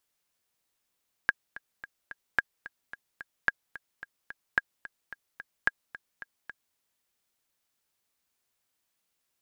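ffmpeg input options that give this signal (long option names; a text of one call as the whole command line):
ffmpeg -f lavfi -i "aevalsrc='pow(10,(-9-18*gte(mod(t,4*60/219),60/219))/20)*sin(2*PI*1630*mod(t,60/219))*exp(-6.91*mod(t,60/219)/0.03)':duration=5.47:sample_rate=44100" out.wav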